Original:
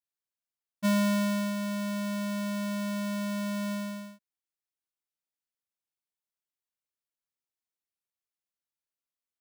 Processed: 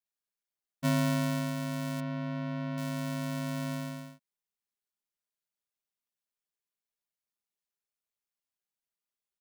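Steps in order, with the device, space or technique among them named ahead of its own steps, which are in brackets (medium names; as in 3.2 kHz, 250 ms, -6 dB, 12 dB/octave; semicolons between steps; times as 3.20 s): 2.00–2.78 s: distance through air 270 m; ring-modulated robot voice (ring modulator 58 Hz; comb 4.9 ms, depth 68%)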